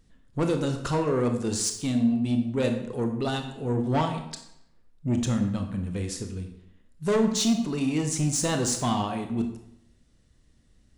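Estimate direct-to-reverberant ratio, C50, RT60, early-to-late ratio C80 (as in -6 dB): 5.0 dB, 7.5 dB, 0.80 s, 10.5 dB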